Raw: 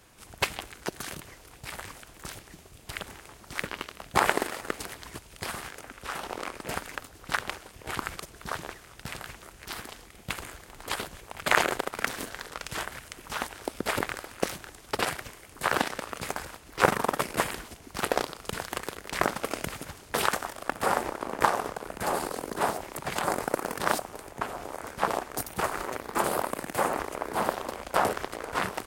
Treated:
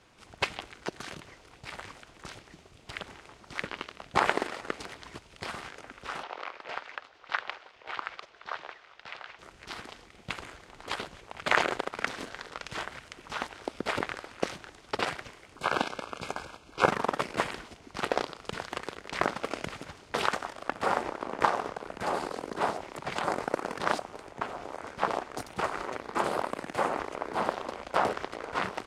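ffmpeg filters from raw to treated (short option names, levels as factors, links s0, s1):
-filter_complex "[0:a]asettb=1/sr,asplit=3[s0][s1][s2];[s0]atrim=end=6.234[s3];[s1]atrim=start=6.23:end=9.39,asetpts=PTS-STARTPTS,afade=t=in:d=0.004:c=qsin,afade=t=out:st=3.156:d=0.004:c=qsin,acrossover=split=480 5100:gain=0.112 1 0.0631[s4][s5][s6];[s4][s5][s6]amix=inputs=3:normalize=0[s7];[s2]atrim=start=9.386[s8];[s3][s7]acrossfade=d=0.004:c1=hsin:c2=qsin[s9];[s9][s8]acrossfade=d=0.004:c1=qsin:c2=hsin,asettb=1/sr,asplit=3[s10][s11][s12];[s10]atrim=end=15.564[s13];[s11]atrim=start=15.56:end=16.9,asetpts=PTS-STARTPTS,afade=t=in:d=0.004:c=qsin,afade=t=out:st=1.336:d=0.004:c=qsin,asuperstop=centerf=1900:order=12:qfactor=5.3[s14];[s12]atrim=start=16.896[s15];[s13][s14]acrossfade=d=0.004:c1=hsin:c2=qsin[s16];[s16][s15]acrossfade=d=0.004:c1=qsin:c2=hsin,lowpass=5300,lowshelf=f=88:g=-7,bandreject=f=1700:w=29,volume=0.841"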